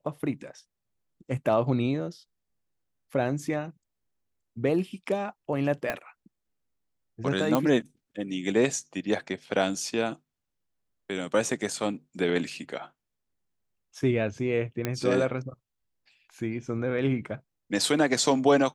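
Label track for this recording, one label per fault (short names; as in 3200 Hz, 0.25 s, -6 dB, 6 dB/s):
5.900000	5.900000	pop -14 dBFS
7.550000	7.550000	pop -11 dBFS
14.850000	14.850000	pop -13 dBFS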